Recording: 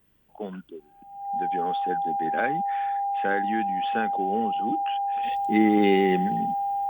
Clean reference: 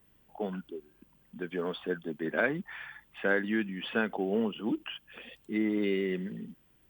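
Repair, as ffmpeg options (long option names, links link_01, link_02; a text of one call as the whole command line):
ffmpeg -i in.wav -af "bandreject=frequency=800:width=30,asetnsamples=nb_out_samples=441:pad=0,asendcmd='5.23 volume volume -9dB',volume=0dB" out.wav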